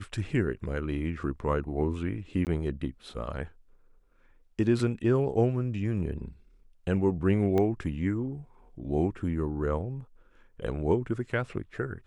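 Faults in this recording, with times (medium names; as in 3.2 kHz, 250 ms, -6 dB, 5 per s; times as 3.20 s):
2.45–2.47 s: dropout 18 ms
7.58 s: pop -17 dBFS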